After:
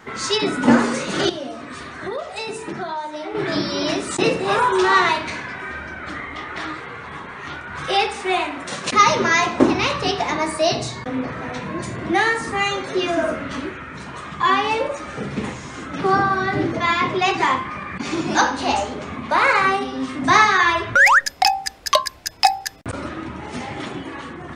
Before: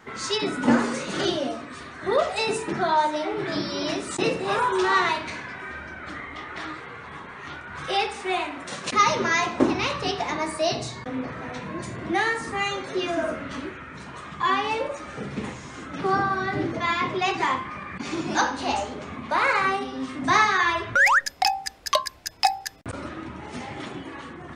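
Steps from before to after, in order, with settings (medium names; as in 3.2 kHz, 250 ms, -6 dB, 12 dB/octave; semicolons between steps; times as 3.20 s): 1.29–3.35 s: compression 4:1, threshold -33 dBFS, peak gain reduction 14 dB; trim +5.5 dB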